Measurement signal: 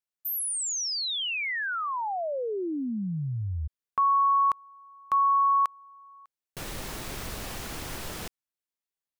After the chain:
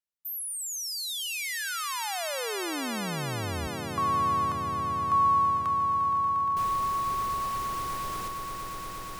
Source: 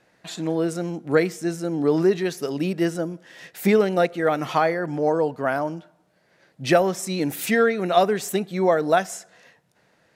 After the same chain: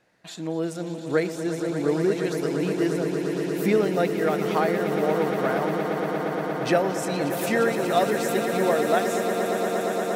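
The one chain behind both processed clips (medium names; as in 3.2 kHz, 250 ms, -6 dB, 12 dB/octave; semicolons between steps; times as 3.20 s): echo with a slow build-up 117 ms, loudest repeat 8, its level -11 dB; trim -4.5 dB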